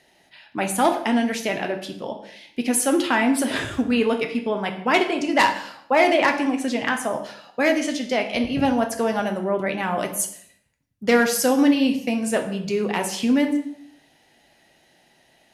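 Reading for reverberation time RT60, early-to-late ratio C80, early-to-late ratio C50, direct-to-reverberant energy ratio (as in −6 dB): 0.65 s, 12.5 dB, 10.0 dB, 4.0 dB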